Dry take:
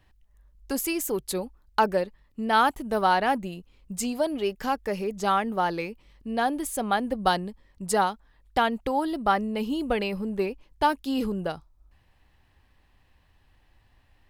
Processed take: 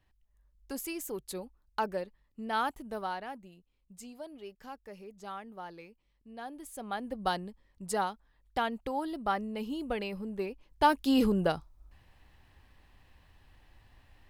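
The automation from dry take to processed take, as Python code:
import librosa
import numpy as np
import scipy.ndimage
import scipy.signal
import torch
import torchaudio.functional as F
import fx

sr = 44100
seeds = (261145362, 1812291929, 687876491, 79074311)

y = fx.gain(x, sr, db=fx.line((2.83, -10.0), (3.33, -18.5), (6.37, -18.5), (7.24, -8.0), (10.47, -8.0), (11.07, 2.0)))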